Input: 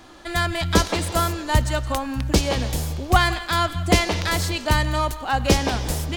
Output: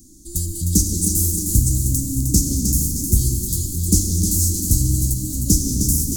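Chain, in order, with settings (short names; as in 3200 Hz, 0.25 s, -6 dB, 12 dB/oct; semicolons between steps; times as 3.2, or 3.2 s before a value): elliptic band-stop 270–6500 Hz, stop band 50 dB; high shelf 4900 Hz +11.5 dB; thinning echo 0.309 s, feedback 57%, high-pass 160 Hz, level -6 dB; on a send at -4 dB: reverb RT60 4.0 s, pre-delay 8 ms; on the sum: gain +3 dB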